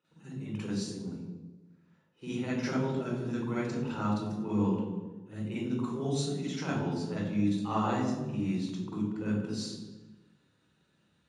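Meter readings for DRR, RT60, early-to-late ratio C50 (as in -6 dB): -9.0 dB, 1.2 s, -1.5 dB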